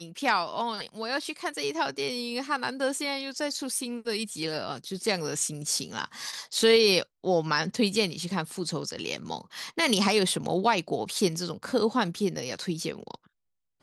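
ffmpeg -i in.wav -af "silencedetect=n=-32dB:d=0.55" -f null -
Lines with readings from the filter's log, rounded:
silence_start: 13.14
silence_end: 13.83 | silence_duration: 0.68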